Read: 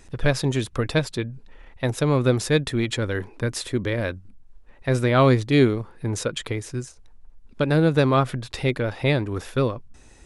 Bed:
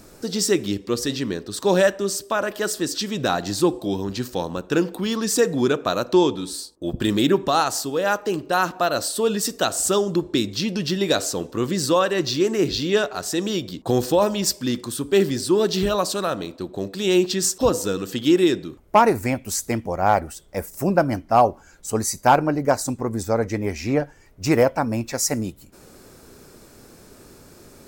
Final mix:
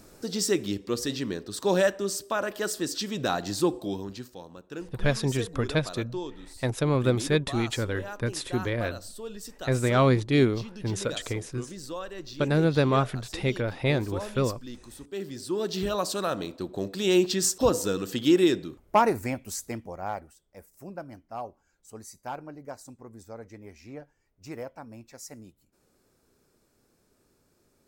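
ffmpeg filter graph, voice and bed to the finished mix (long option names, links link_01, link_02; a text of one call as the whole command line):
ffmpeg -i stem1.wav -i stem2.wav -filter_complex "[0:a]adelay=4800,volume=-4dB[link_01];[1:a]volume=9dB,afade=type=out:start_time=3.77:duration=0.58:silence=0.237137,afade=type=in:start_time=15.17:duration=1.26:silence=0.188365,afade=type=out:start_time=18.48:duration=1.89:silence=0.133352[link_02];[link_01][link_02]amix=inputs=2:normalize=0" out.wav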